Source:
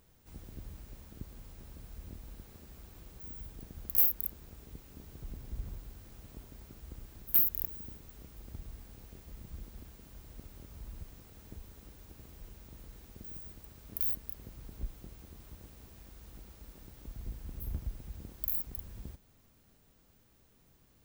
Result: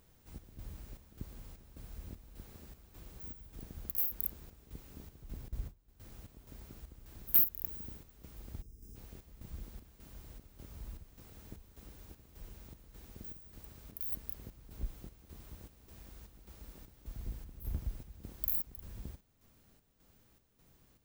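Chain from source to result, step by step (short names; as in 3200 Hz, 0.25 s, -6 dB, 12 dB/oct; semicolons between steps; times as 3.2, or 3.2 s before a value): chopper 1.7 Hz, depth 60%, duty 65%; 5.48–6 gate -43 dBFS, range -16 dB; 8.62–8.96 spectral gain 490–4800 Hz -17 dB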